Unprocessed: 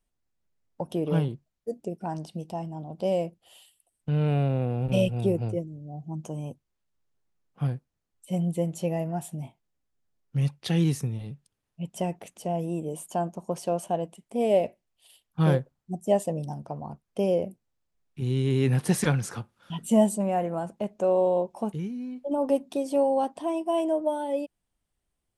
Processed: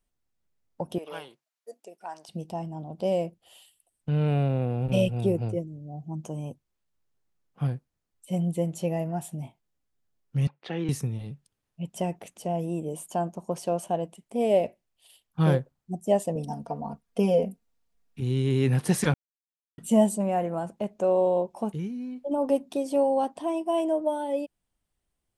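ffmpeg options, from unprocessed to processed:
ffmpeg -i in.wav -filter_complex "[0:a]asettb=1/sr,asplit=3[link_01][link_02][link_03];[link_01]atrim=end=0.984[link_04];[link_02]atrim=start=0.98:end=2.29,asetpts=PTS-STARTPTS,afade=type=in:duration=0.004:curve=qsin,afade=type=out:start_time=1.306:duration=0.004:curve=qsin,highpass=850[link_05];[link_03]atrim=start=2.286[link_06];[link_04][link_05]acrossfade=duration=0.004:curve1=hsin:curve2=qsin[link_07];[link_07][link_06]acrossfade=duration=0.004:curve1=qsin:curve2=hsin,asettb=1/sr,asplit=3[link_08][link_09][link_10];[link_08]atrim=end=10.474[link_11];[link_09]atrim=start=10.47:end=10.89,asetpts=PTS-STARTPTS,afade=type=in:duration=0.004:curve=qsin,afade=type=out:start_time=0.416:duration=0.004:curve=qsin,highpass=320,lowpass=2200[link_12];[link_10]atrim=start=10.886[link_13];[link_11][link_12]acrossfade=duration=0.004:curve1=hsin:curve2=qsin[link_14];[link_14][link_13]acrossfade=duration=0.004:curve1=qsin:curve2=hsin,asettb=1/sr,asplit=3[link_15][link_16][link_17];[link_15]atrim=end=16.354[link_18];[link_16]atrim=start=16.35:end=18.2,asetpts=PTS-STARTPTS,afade=type=in:duration=0.004:curve=qsin,afade=type=out:start_time=1.846:duration=0.004:curve=qsin,aecho=1:1:4.3:1,atrim=end_sample=81585[link_19];[link_17]atrim=start=18.196[link_20];[link_18][link_19]acrossfade=duration=0.004:curve1=hsin:curve2=qsin[link_21];[link_21][link_20]acrossfade=duration=0.004:curve1=qsin:curve2=hsin,asplit=3[link_22][link_23][link_24];[link_22]atrim=end=19.14,asetpts=PTS-STARTPTS,afade=type=out:start_time=19.136:duration=0.004:curve=hsin[link_25];[link_23]atrim=start=19.14:end=19.78,asetpts=PTS-STARTPTS,volume=0[link_26];[link_24]atrim=start=19.78,asetpts=PTS-STARTPTS,afade=type=in:duration=0.004:curve=hsin[link_27];[link_25][link_26][link_27]concat=n=3:v=0:a=1" out.wav

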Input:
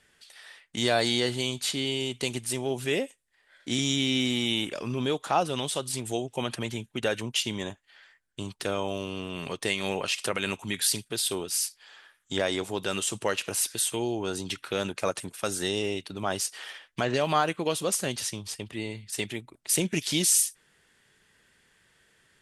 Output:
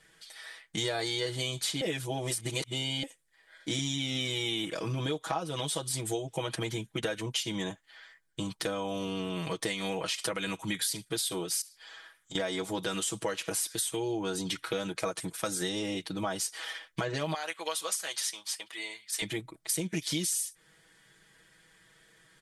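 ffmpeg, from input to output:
ffmpeg -i in.wav -filter_complex "[0:a]asettb=1/sr,asplit=3[link_01][link_02][link_03];[link_01]atrim=end=11.614[link_04];[link_02]atrim=start=11.61:end=12.35,asetpts=PTS-STARTPTS,afade=type=in:duration=0.004:curve=qsin,afade=type=out:start_time=0.736:duration=0.004:curve=qsin,acompressor=threshold=-43dB:ratio=12:attack=3.2:release=140:knee=1:detection=peak[link_05];[link_03]atrim=start=12.346[link_06];[link_04][link_05]acrossfade=duration=0.004:curve1=hsin:curve2=qsin[link_07];[link_07][link_06]acrossfade=duration=0.004:curve1=qsin:curve2=hsin,asettb=1/sr,asplit=3[link_08][link_09][link_10];[link_08]atrim=end=17.344[link_11];[link_09]atrim=start=17.34:end=19.22,asetpts=PTS-STARTPTS,afade=type=in:duration=0.004:curve=qsin,afade=type=out:start_time=1.876:duration=0.004:curve=qsin,highpass=980[link_12];[link_10]atrim=start=19.216[link_13];[link_11][link_12]acrossfade=duration=0.004:curve1=hsin:curve2=qsin[link_14];[link_14][link_13]acrossfade=duration=0.004:curve1=qsin:curve2=hsin,asplit=3[link_15][link_16][link_17];[link_15]atrim=end=1.812[link_18];[link_16]atrim=start=1.808:end=3.032,asetpts=PTS-STARTPTS,areverse[link_19];[link_17]atrim=start=3.028[link_20];[link_18][link_19]acrossfade=duration=0.004:curve1=hsin:curve2=hsin[link_21];[link_21][link_20]acrossfade=duration=0.004:curve1=hsin:curve2=hsin,bandreject=frequency=2700:width=11,aecho=1:1:6.2:0.94,acompressor=threshold=-29dB:ratio=6" out.wav

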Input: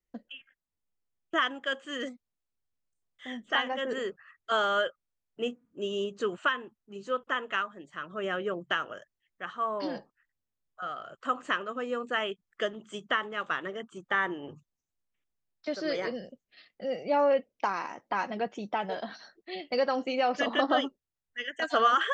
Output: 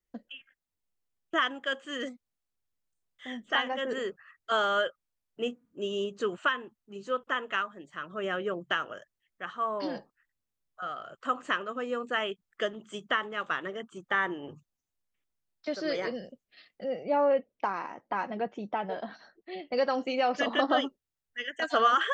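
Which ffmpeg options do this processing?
ffmpeg -i in.wav -filter_complex "[0:a]asettb=1/sr,asplit=3[link_01][link_02][link_03];[link_01]atrim=end=16.844[link_04];[link_02]atrim=start=16.84:end=19.77,asetpts=PTS-STARTPTS,afade=type=in:duration=0.004:curve=qsin,afade=type=out:start_time=2.926:duration=0.004:curve=qsin,lowpass=frequency=1800:poles=1[link_05];[link_03]atrim=start=19.766[link_06];[link_04][link_05]acrossfade=duration=0.004:curve1=hsin:curve2=qsin[link_07];[link_07][link_06]acrossfade=duration=0.004:curve1=qsin:curve2=hsin" out.wav

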